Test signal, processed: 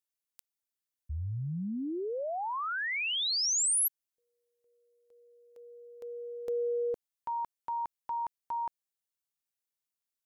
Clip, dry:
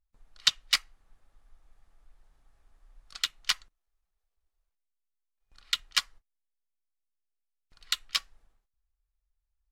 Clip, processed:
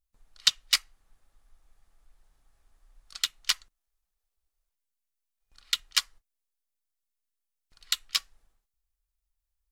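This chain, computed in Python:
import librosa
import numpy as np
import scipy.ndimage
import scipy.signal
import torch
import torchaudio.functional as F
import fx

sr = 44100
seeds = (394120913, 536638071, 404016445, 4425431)

y = fx.high_shelf(x, sr, hz=4300.0, db=8.5)
y = F.gain(torch.from_numpy(y), -2.5).numpy()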